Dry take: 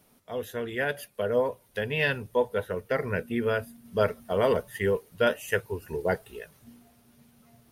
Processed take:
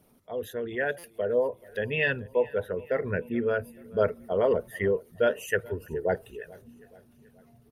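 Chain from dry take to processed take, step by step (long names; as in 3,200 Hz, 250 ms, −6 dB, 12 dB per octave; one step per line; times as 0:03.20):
spectral envelope exaggerated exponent 1.5
repeating echo 430 ms, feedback 53%, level −23 dB
buffer that repeats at 0:00.98, samples 256, times 9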